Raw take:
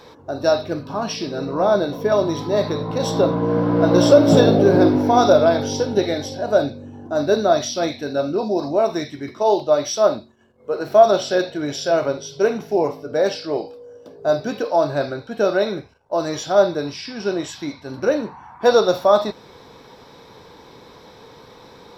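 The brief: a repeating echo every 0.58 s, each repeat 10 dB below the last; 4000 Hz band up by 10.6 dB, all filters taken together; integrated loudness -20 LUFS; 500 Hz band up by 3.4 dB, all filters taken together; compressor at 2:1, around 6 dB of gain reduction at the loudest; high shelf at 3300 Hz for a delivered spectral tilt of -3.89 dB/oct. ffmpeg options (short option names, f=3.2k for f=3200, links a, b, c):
-af "equalizer=f=500:t=o:g=4,highshelf=f=3.3k:g=6.5,equalizer=f=4k:t=o:g=8,acompressor=threshold=-14dB:ratio=2,aecho=1:1:580|1160|1740|2320:0.316|0.101|0.0324|0.0104,volume=-1.5dB"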